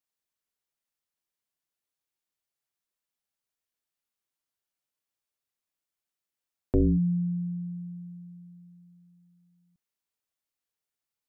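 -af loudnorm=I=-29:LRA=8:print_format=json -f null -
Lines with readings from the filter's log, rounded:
"input_i" : "-28.9",
"input_tp" : "-16.5",
"input_lra" : "20.5",
"input_thresh" : "-43.4",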